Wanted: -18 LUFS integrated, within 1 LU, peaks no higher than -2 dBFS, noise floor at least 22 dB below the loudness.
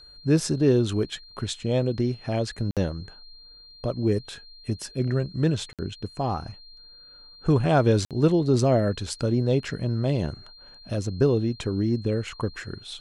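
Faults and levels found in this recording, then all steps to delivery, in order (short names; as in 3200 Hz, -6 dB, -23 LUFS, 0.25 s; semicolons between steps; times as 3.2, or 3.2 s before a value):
dropouts 3; longest dropout 57 ms; steady tone 4200 Hz; tone level -47 dBFS; loudness -25.5 LUFS; peak -8.0 dBFS; loudness target -18.0 LUFS
-> interpolate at 2.71/5.73/8.05, 57 ms; notch 4200 Hz, Q 30; gain +7.5 dB; limiter -2 dBFS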